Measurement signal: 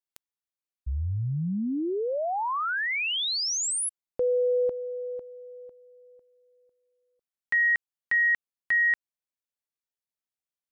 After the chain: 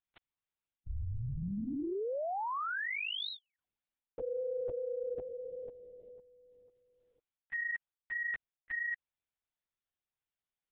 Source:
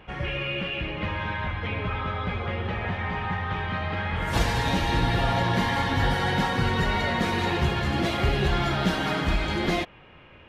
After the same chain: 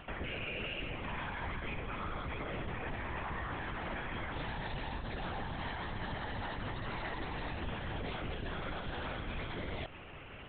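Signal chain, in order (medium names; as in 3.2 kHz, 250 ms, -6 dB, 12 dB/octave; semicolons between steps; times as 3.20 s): LPC vocoder at 8 kHz whisper; reverse; compression 12:1, threshold -35 dBFS; reverse; peak limiter -31.5 dBFS; trim +1 dB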